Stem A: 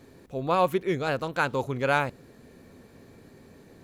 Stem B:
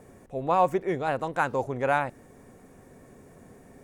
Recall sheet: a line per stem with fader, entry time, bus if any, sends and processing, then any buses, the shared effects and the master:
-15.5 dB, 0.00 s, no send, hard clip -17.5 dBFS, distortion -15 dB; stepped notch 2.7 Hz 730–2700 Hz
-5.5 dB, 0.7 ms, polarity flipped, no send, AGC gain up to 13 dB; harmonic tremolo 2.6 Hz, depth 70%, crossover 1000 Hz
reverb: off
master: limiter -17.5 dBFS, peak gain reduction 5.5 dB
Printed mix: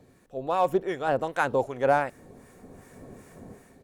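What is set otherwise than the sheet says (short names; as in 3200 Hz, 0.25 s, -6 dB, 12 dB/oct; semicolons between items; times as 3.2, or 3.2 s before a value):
stem A -15.5 dB -> -9.0 dB; master: missing limiter -17.5 dBFS, peak gain reduction 5.5 dB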